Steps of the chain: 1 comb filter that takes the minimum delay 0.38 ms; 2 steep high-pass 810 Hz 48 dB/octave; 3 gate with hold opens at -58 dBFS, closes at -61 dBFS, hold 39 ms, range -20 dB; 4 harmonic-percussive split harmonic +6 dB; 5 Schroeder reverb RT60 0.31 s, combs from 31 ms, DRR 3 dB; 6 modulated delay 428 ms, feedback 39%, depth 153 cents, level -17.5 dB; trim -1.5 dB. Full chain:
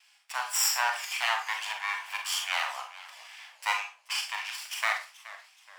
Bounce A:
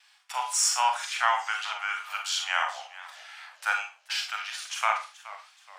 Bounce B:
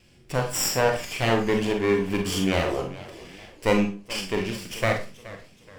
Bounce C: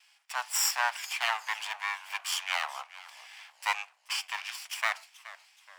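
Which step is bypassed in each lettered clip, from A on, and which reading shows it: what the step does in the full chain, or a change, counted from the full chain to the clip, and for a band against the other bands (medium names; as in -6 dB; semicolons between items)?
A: 1, 1 kHz band +3.5 dB; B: 2, 500 Hz band +23.5 dB; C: 5, crest factor change +1.5 dB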